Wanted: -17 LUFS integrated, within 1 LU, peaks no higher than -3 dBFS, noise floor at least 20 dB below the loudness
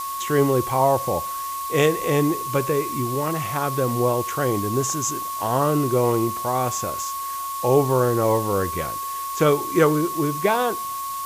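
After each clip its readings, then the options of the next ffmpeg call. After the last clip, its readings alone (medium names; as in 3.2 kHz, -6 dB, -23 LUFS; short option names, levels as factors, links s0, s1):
steady tone 1.1 kHz; tone level -27 dBFS; noise floor -29 dBFS; noise floor target -42 dBFS; loudness -22.0 LUFS; peak level -5.5 dBFS; loudness target -17.0 LUFS
-> -af "bandreject=f=1100:w=30"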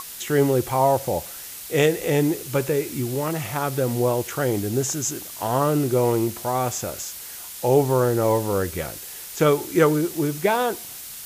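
steady tone not found; noise floor -37 dBFS; noise floor target -43 dBFS
-> -af "afftdn=nr=6:nf=-37"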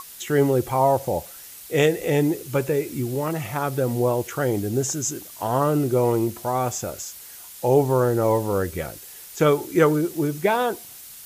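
noise floor -42 dBFS; noise floor target -43 dBFS
-> -af "afftdn=nr=6:nf=-42"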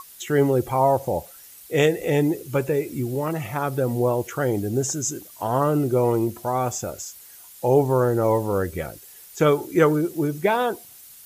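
noise floor -46 dBFS; loudness -23.0 LUFS; peak level -5.5 dBFS; loudness target -17.0 LUFS
-> -af "volume=2,alimiter=limit=0.708:level=0:latency=1"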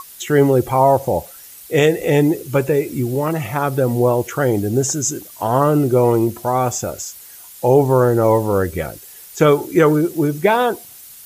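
loudness -17.0 LUFS; peak level -3.0 dBFS; noise floor -40 dBFS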